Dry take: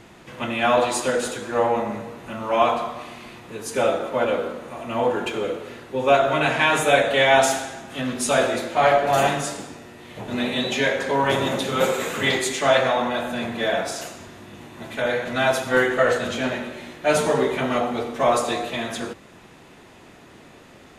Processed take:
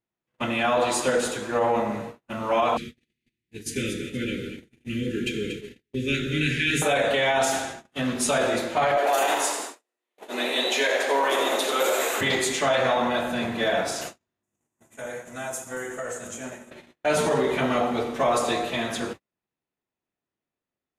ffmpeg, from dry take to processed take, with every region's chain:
-filter_complex "[0:a]asettb=1/sr,asplit=3[s0][s1][s2];[s0]atrim=end=2.774[s3];[s1]atrim=start=2.77:end=6.82,asetpts=PTS-STARTPTS,afade=t=in:d=0.004:c=qsin,afade=t=out:st=4.046:d=0.004:c=qsin,asuperstop=centerf=840:order=8:qfactor=0.59,lowshelf=f=140:g=7.5,aecho=1:1:235|470|705:0.335|0.0837|0.0209,atrim=end_sample=178605[s4];[s2]atrim=start=6.816[s5];[s3][s4]acrossfade=d=0.004:c1=hsin:c2=qsin[s6];[s6][s5]acrossfade=d=0.004:c1=qsin:c2=hsin,asettb=1/sr,asplit=3[s7][s8][s9];[s7]atrim=end=8.974[s10];[s8]atrim=start=8.97:end=12.21,asetpts=PTS-STARTPTS,afade=t=in:d=0.004:c=qsin,afade=t=out:st=3.236:d=0.004:c=qsin,highpass=f=320:w=0.5412,highpass=f=320:w=1.3066,highshelf=f=8300:g=9.5,asplit=7[s11][s12][s13][s14][s15][s16][s17];[s12]adelay=86,afreqshift=83,volume=0.355[s18];[s13]adelay=172,afreqshift=166,volume=0.195[s19];[s14]adelay=258,afreqshift=249,volume=0.107[s20];[s15]adelay=344,afreqshift=332,volume=0.0589[s21];[s16]adelay=430,afreqshift=415,volume=0.0324[s22];[s17]adelay=516,afreqshift=498,volume=0.0178[s23];[s11][s18][s19][s20][s21][s22][s23]amix=inputs=7:normalize=0,atrim=end_sample=142884[s24];[s9]atrim=start=12.206[s25];[s10][s24]acrossfade=d=0.004:c1=hsin:c2=qsin[s26];[s26][s25]acrossfade=d=0.004:c1=qsin:c2=hsin,asettb=1/sr,asplit=3[s27][s28][s29];[s27]atrim=end=14.434[s30];[s28]atrim=start=14.43:end=16.71,asetpts=PTS-STARTPTS,afade=t=in:d=0.004:c=qsin,afade=t=out:st=2.276:d=0.004:c=qsin,highshelf=f=5500:t=q:w=3:g=10.5,acompressor=threshold=0.02:ratio=3:attack=3.2:release=140:knee=1:detection=peak[s31];[s29]atrim=start=16.706[s32];[s30][s31]acrossfade=d=0.004:c1=hsin:c2=qsin[s33];[s33][s32]acrossfade=d=0.004:c1=qsin:c2=hsin,agate=range=0.00708:threshold=0.02:ratio=16:detection=peak,alimiter=limit=0.211:level=0:latency=1:release=37"

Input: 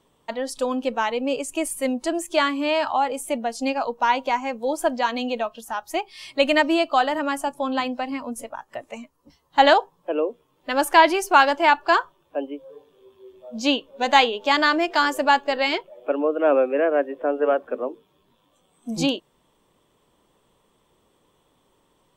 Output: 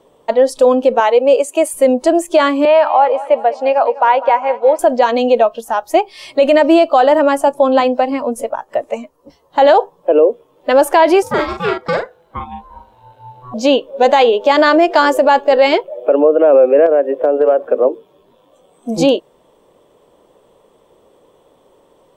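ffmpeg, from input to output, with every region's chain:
-filter_complex "[0:a]asettb=1/sr,asplit=3[s0][s1][s2];[s0]atrim=end=1.004[s3];[s1]atrim=start=1:end=1.74,asetpts=PTS-STARTPTS,afade=t=in:d=0.004:c=qsin,afade=t=out:st=0.736:d=0.004:c=qsin,highpass=390,bandreject=f=5400:w=8.1[s4];[s2]atrim=start=1.736[s5];[s3][s4]acrossfade=d=0.004:c1=hsin:c2=qsin[s6];[s6][s5]acrossfade=d=0.004:c1=qsin:c2=hsin,asettb=1/sr,asplit=3[s7][s8][s9];[s7]atrim=end=2.654[s10];[s8]atrim=start=2.65:end=4.79,asetpts=PTS-STARTPTS,afade=t=in:d=0.004:c=qsin,afade=t=out:st=2.136:d=0.004:c=qsin,highpass=560,lowpass=2600,aecho=1:1:200|400|600|800|1000:0.141|0.0777|0.0427|0.0235|0.0129,atrim=end_sample=94374[s11];[s9]atrim=start=4.786[s12];[s10][s11]acrossfade=d=0.004:c1=hsin:c2=qsin[s13];[s13][s12]acrossfade=d=0.004:c1=qsin:c2=hsin,asettb=1/sr,asplit=3[s14][s15][s16];[s14]atrim=end=11.224[s17];[s15]atrim=start=11.22:end=13.54,asetpts=PTS-STARTPTS,afade=t=in:d=0.004:c=qsin,afade=t=out:st=2.316:d=0.004:c=qsin,acrossover=split=620|3000[s18][s19][s20];[s18]acompressor=threshold=0.0141:ratio=4[s21];[s19]acompressor=threshold=0.0447:ratio=4[s22];[s20]acompressor=threshold=0.0158:ratio=4[s23];[s21][s22][s23]amix=inputs=3:normalize=0,aeval=exprs='val(0)*sin(2*PI*500*n/s)':c=same,asplit=2[s24][s25];[s25]adelay=42,volume=0.596[s26];[s24][s26]amix=inputs=2:normalize=0,atrim=end_sample=102312[s27];[s16]atrim=start=13.536[s28];[s17][s27]acrossfade=d=0.004:c1=hsin:c2=qsin[s29];[s29][s28]acrossfade=d=0.004:c1=qsin:c2=hsin,asettb=1/sr,asplit=3[s30][s31][s32];[s30]atrim=end=16.864[s33];[s31]atrim=start=16.86:end=17.85,asetpts=PTS-STARTPTS,afade=t=in:d=0.004:c=qsin,afade=t=out:st=0.986:d=0.004:c=qsin,acompressor=threshold=0.0708:ratio=16:attack=3.2:release=140:knee=1:detection=peak,aeval=exprs='0.106*(abs(mod(val(0)/0.106+3,4)-2)-1)':c=same[s34];[s32]atrim=start=17.846[s35];[s33][s34]acrossfade=d=0.004:c1=hsin:c2=qsin[s36];[s36][s35]acrossfade=d=0.004:c1=qsin:c2=hsin,equalizer=f=530:t=o:w=1.4:g=13.5,alimiter=limit=0.447:level=0:latency=1:release=40,volume=1.78"

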